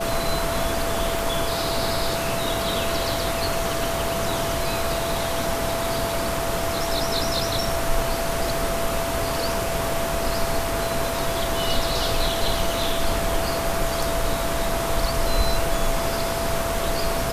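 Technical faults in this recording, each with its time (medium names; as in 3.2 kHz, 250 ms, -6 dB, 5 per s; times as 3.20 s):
whine 670 Hz -27 dBFS
1.19 s: pop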